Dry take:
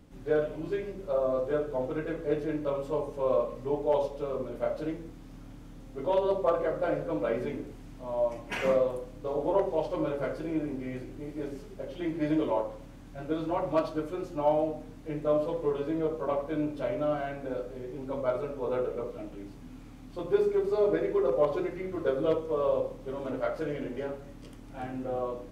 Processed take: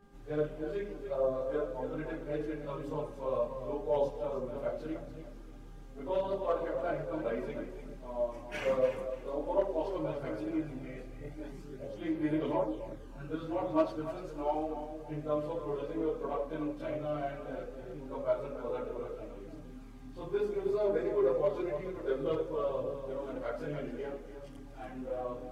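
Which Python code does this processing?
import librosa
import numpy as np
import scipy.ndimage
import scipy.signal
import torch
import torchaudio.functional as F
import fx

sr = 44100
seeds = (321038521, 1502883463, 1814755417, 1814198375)

y = fx.echo_feedback(x, sr, ms=293, feedback_pct=27, wet_db=-9.5)
y = fx.chorus_voices(y, sr, voices=4, hz=0.3, base_ms=24, depth_ms=4.9, mix_pct=70)
y = fx.dmg_buzz(y, sr, base_hz=400.0, harmonics=4, level_db=-63.0, tilt_db=-4, odd_only=False)
y = y * 10.0 ** (-3.0 / 20.0)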